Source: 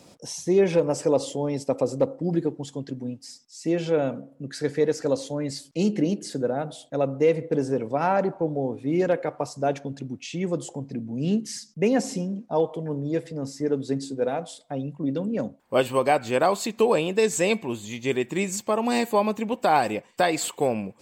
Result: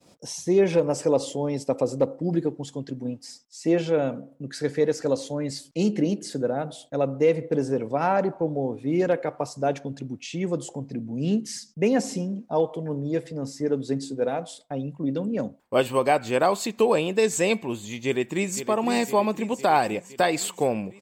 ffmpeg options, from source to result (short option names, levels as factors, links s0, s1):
-filter_complex "[0:a]asettb=1/sr,asplit=3[s0][s1][s2];[s0]atrim=end=3.054[s3];[s1]atrim=start=3.05:end=3.82,asetpts=PTS-STARTPTS,afade=t=in:d=0.004:c=qsin,afade=t=out:st=0.766:d=0.004:c=qsin,equalizer=f=850:t=o:w=2.6:g=5.5[s4];[s2]atrim=start=3.816[s5];[s3][s4]acrossfade=d=0.004:c1=hsin:c2=qsin[s6];[s6][s5]acrossfade=d=0.004:c1=qsin:c2=hsin,asplit=2[s7][s8];[s8]afade=t=in:st=18.05:d=0.01,afade=t=out:st=18.66:d=0.01,aecho=0:1:510|1020|1530|2040|2550|3060|3570|4080:0.298538|0.19405|0.126132|0.0819861|0.0532909|0.0346391|0.0225154|0.014635[s9];[s7][s9]amix=inputs=2:normalize=0,agate=range=0.0224:threshold=0.00447:ratio=3:detection=peak"